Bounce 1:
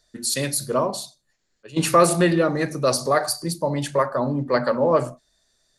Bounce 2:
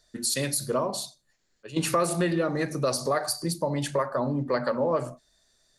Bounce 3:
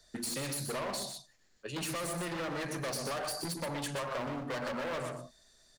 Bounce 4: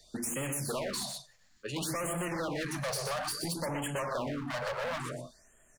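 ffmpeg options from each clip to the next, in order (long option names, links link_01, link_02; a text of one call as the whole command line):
ffmpeg -i in.wav -af "acompressor=threshold=-25dB:ratio=2.5" out.wav
ffmpeg -i in.wav -filter_complex "[0:a]asoftclip=type=hard:threshold=-31dB,asplit=2[link_01][link_02];[link_02]adelay=122.4,volume=-7dB,highshelf=frequency=4000:gain=-2.76[link_03];[link_01][link_03]amix=inputs=2:normalize=0,acrossover=split=120|780[link_04][link_05][link_06];[link_04]acompressor=threshold=-57dB:ratio=4[link_07];[link_05]acompressor=threshold=-41dB:ratio=4[link_08];[link_06]acompressor=threshold=-39dB:ratio=4[link_09];[link_07][link_08][link_09]amix=inputs=3:normalize=0,volume=2dB" out.wav
ffmpeg -i in.wav -filter_complex "[0:a]asplit=2[link_01][link_02];[link_02]asoftclip=type=tanh:threshold=-37.5dB,volume=-5dB[link_03];[link_01][link_03]amix=inputs=2:normalize=0,afftfilt=real='re*(1-between(b*sr/1024,270*pow(4800/270,0.5+0.5*sin(2*PI*0.58*pts/sr))/1.41,270*pow(4800/270,0.5+0.5*sin(2*PI*0.58*pts/sr))*1.41))':imag='im*(1-between(b*sr/1024,270*pow(4800/270,0.5+0.5*sin(2*PI*0.58*pts/sr))/1.41,270*pow(4800/270,0.5+0.5*sin(2*PI*0.58*pts/sr))*1.41))':win_size=1024:overlap=0.75" out.wav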